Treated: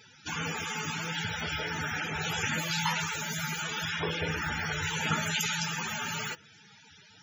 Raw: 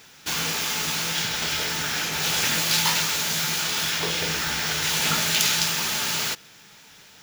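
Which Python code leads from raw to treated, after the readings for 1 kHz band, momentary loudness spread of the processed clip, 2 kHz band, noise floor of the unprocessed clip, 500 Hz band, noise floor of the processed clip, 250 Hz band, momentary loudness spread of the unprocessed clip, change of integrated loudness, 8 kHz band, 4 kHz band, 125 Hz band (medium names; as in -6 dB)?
-4.0 dB, 5 LU, -5.0 dB, -50 dBFS, -4.5 dB, -57 dBFS, -2.5 dB, 5 LU, -9.0 dB, -12.5 dB, -11.5 dB, -1.0 dB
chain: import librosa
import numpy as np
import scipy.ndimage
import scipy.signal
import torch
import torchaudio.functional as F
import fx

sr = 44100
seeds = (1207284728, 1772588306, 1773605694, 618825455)

y = fx.dynamic_eq(x, sr, hz=4400.0, q=1.1, threshold_db=-38.0, ratio=4.0, max_db=-6)
y = fx.spec_topn(y, sr, count=64)
y = fx.peak_eq(y, sr, hz=93.0, db=11.5, octaves=0.44)
y = y * librosa.db_to_amplitude(-2.0)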